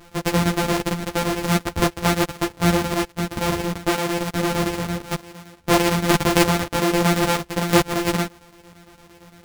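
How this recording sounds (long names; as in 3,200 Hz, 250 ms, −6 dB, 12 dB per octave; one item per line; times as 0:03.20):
a buzz of ramps at a fixed pitch in blocks of 256 samples
chopped level 8.8 Hz, depth 60%, duty 75%
a shimmering, thickened sound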